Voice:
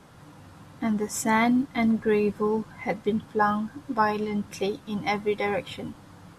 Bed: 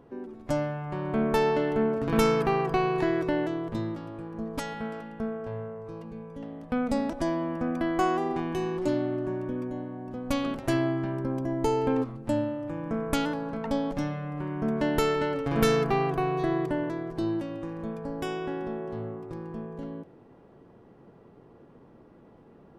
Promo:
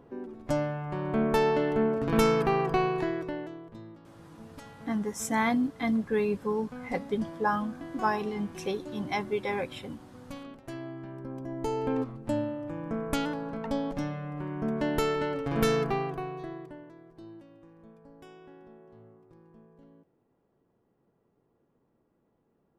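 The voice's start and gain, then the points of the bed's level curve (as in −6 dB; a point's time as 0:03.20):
4.05 s, −4.5 dB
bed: 0:02.81 −0.5 dB
0:03.74 −14.5 dB
0:10.71 −14.5 dB
0:12.03 −2.5 dB
0:15.85 −2.5 dB
0:16.86 −18.5 dB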